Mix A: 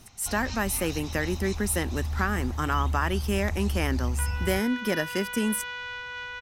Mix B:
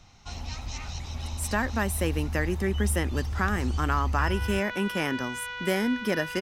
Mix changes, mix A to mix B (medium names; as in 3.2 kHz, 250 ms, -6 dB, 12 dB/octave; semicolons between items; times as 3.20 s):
speech: entry +1.20 s; master: add treble shelf 9.2 kHz -7.5 dB